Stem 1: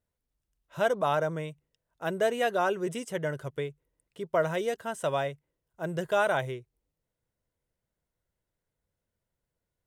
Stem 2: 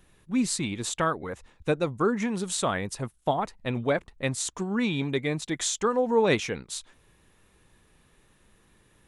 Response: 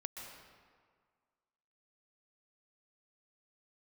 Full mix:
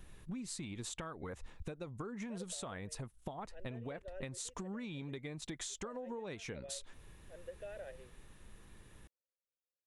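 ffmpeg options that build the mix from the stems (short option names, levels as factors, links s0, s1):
-filter_complex "[0:a]asplit=3[s0][s1][s2];[s0]bandpass=f=530:t=q:w=8,volume=1[s3];[s1]bandpass=f=1840:t=q:w=8,volume=0.501[s4];[s2]bandpass=f=2480:t=q:w=8,volume=0.355[s5];[s3][s4][s5]amix=inputs=3:normalize=0,adelay=1500,volume=0.299[s6];[1:a]lowshelf=f=90:g=9.5,acompressor=threshold=0.0282:ratio=6,volume=1[s7];[s6][s7]amix=inputs=2:normalize=0,acompressor=threshold=0.00891:ratio=6"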